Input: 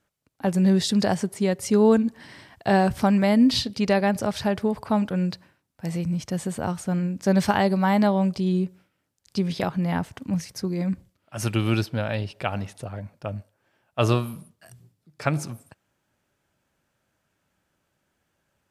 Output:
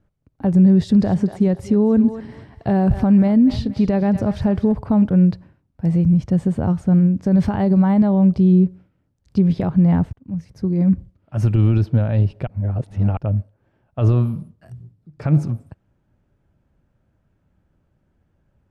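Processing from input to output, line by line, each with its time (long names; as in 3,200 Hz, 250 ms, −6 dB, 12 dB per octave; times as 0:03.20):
0:00.68–0:04.72: feedback echo with a high-pass in the loop 237 ms, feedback 38%, high-pass 810 Hz, level −13 dB
0:10.13–0:10.92: fade in
0:12.47–0:13.17: reverse
whole clip: brickwall limiter −17 dBFS; spectral tilt −4.5 dB per octave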